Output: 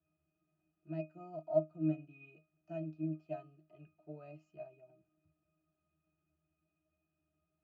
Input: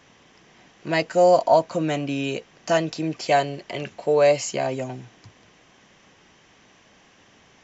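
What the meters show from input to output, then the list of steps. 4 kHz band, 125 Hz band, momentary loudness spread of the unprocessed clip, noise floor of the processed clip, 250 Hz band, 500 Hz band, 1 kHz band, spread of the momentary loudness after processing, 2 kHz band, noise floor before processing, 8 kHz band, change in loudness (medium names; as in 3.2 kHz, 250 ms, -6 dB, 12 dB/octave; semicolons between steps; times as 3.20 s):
under -40 dB, -12.5 dB, 16 LU, under -85 dBFS, -13.0 dB, -21.0 dB, -30.0 dB, 19 LU, -31.5 dB, -56 dBFS, no reading, -17.5 dB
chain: pitch-class resonator D#, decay 0.26 s; upward expansion 1.5:1, over -45 dBFS; trim -2.5 dB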